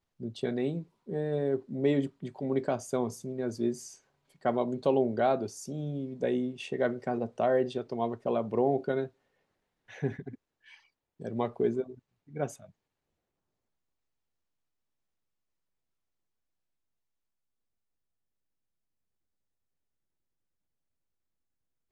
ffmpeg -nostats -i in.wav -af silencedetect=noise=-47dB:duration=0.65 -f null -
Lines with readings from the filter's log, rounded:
silence_start: 9.08
silence_end: 9.89 | silence_duration: 0.81
silence_start: 12.69
silence_end: 21.91 | silence_duration: 9.22